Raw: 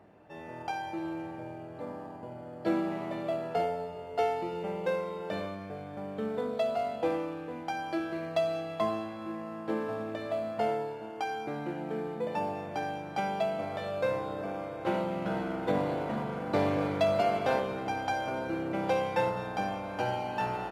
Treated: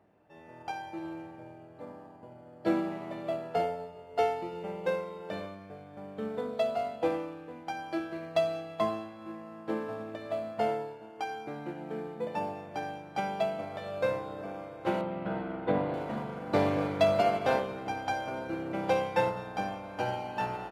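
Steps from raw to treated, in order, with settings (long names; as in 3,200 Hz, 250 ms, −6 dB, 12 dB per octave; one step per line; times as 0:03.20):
0:15.01–0:15.94: moving average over 7 samples
expander for the loud parts 1.5 to 1, over −45 dBFS
level +3 dB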